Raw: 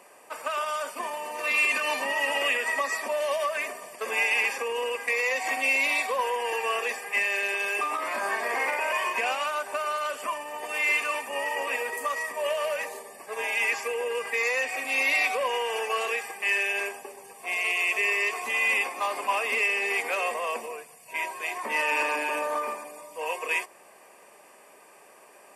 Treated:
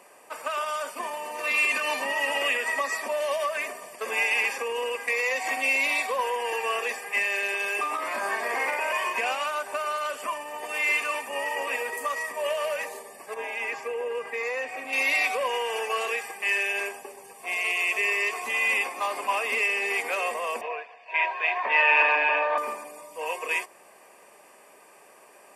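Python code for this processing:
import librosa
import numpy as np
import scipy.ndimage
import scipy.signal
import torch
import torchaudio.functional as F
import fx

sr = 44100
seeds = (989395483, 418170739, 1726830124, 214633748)

y = fx.high_shelf(x, sr, hz=2200.0, db=-11.5, at=(13.34, 14.93))
y = fx.cabinet(y, sr, low_hz=420.0, low_slope=12, high_hz=3900.0, hz=(480.0, 700.0, 1000.0, 1700.0, 2500.0, 3600.0), db=(3, 8, 5, 8, 7, 4), at=(20.61, 22.58))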